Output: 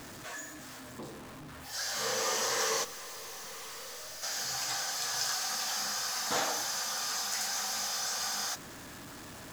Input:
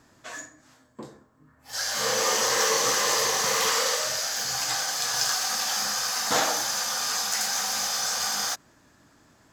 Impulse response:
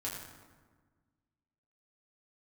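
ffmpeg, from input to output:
-filter_complex "[0:a]aeval=exprs='val(0)+0.5*0.0224*sgn(val(0))':channel_layout=same,asplit=3[link_01][link_02][link_03];[link_01]afade=type=out:start_time=2.83:duration=0.02[link_04];[link_02]aeval=exprs='(tanh(56.2*val(0)+0.25)-tanh(0.25))/56.2':channel_layout=same,afade=type=in:start_time=2.83:duration=0.02,afade=type=out:start_time=4.22:duration=0.02[link_05];[link_03]afade=type=in:start_time=4.22:duration=0.02[link_06];[link_04][link_05][link_06]amix=inputs=3:normalize=0,volume=-8.5dB"

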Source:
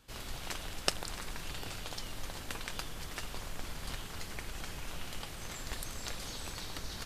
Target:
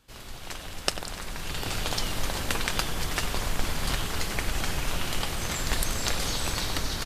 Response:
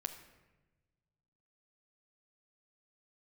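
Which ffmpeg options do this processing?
-filter_complex "[0:a]asplit=2[link_01][link_02];[link_02]adelay=95,lowpass=frequency=2000:poles=1,volume=-9.5dB,asplit=2[link_03][link_04];[link_04]adelay=95,lowpass=frequency=2000:poles=1,volume=0.48,asplit=2[link_05][link_06];[link_06]adelay=95,lowpass=frequency=2000:poles=1,volume=0.48,asplit=2[link_07][link_08];[link_08]adelay=95,lowpass=frequency=2000:poles=1,volume=0.48,asplit=2[link_09][link_10];[link_10]adelay=95,lowpass=frequency=2000:poles=1,volume=0.48[link_11];[link_01][link_03][link_05][link_07][link_09][link_11]amix=inputs=6:normalize=0,dynaudnorm=framelen=110:gausssize=11:maxgain=12.5dB"

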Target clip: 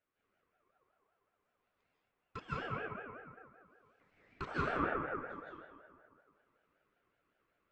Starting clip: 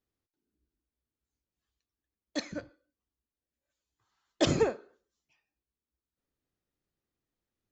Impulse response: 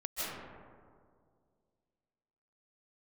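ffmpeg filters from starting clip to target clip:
-filter_complex "[0:a]acrossover=split=160[link_01][link_02];[link_02]acompressor=threshold=-47dB:ratio=2.5[link_03];[link_01][link_03]amix=inputs=2:normalize=0,acrossover=split=330 2300:gain=0.0708 1 0.0891[link_04][link_05][link_06];[link_04][link_05][link_06]amix=inputs=3:normalize=0,asplit=2[link_07][link_08];[link_08]acompressor=threshold=-57dB:ratio=6,volume=1dB[link_09];[link_07][link_09]amix=inputs=2:normalize=0[link_10];[1:a]atrim=start_sample=2205[link_11];[link_10][link_11]afir=irnorm=-1:irlink=0,aeval=exprs='val(0)*sin(2*PI*890*n/s+890*0.2/5.3*sin(2*PI*5.3*n/s))':channel_layout=same,volume=6.5dB"

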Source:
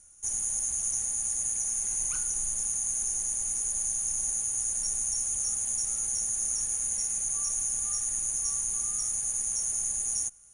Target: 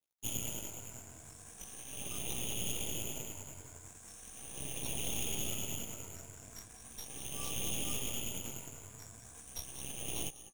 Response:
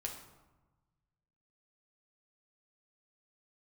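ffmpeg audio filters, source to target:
-filter_complex "[0:a]afftfilt=real='re*pow(10,22/40*sin(2*PI*(1.7*log(max(b,1)*sr/1024/100)/log(2)-(0.38)*(pts-256)/sr)))':imag='im*pow(10,22/40*sin(2*PI*(1.7*log(max(b,1)*sr/1024/100)/log(2)-(0.38)*(pts-256)/sr)))':win_size=1024:overlap=0.75,firequalizer=gain_entry='entry(170,0);entry(1200,-8);entry(2400,-18)':delay=0.05:min_phase=1,acrossover=split=1200[link_01][link_02];[link_01]acompressor=threshold=-47dB:ratio=12[link_03];[link_03][link_02]amix=inputs=2:normalize=0,aeval=exprs='sgn(val(0))*max(abs(val(0))-0.0015,0)':channel_layout=same,highpass=84,acrusher=bits=6:mode=log:mix=0:aa=0.000001,asplit=2[link_04][link_05];[link_05]aecho=0:1:212|424|636|848|1060:0.0891|0.0526|0.031|0.0183|0.0108[link_06];[link_04][link_06]amix=inputs=2:normalize=0,flanger=delay=16:depth=6.2:speed=0.41,asplit=2[link_07][link_08];[link_08]adelay=198.3,volume=-8dB,highshelf=frequency=4000:gain=-4.46[link_09];[link_07][link_09]amix=inputs=2:normalize=0,aeval=exprs='0.0376*(cos(1*acos(clip(val(0)/0.0376,-1,1)))-cos(1*PI/2))+0.015*(cos(6*acos(clip(val(0)/0.0376,-1,1)))-cos(6*PI/2))':channel_layout=same,adynamicequalizer=threshold=0.00112:dfrequency=3500:dqfactor=0.7:tfrequency=3500:tqfactor=0.7:attack=5:release=100:ratio=0.375:range=2:mode=cutabove:tftype=highshelf,volume=4dB"

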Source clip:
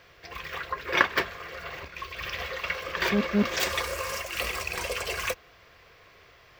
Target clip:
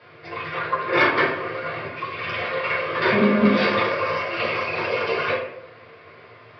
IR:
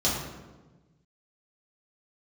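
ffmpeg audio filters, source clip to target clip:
-filter_complex "[0:a]bass=frequency=250:gain=-4,treble=frequency=4000:gain=-5,aresample=11025,asoftclip=type=tanh:threshold=-15.5dB,aresample=44100[link_01];[1:a]atrim=start_sample=2205,asetrate=79380,aresample=44100[link_02];[link_01][link_02]afir=irnorm=-1:irlink=0"

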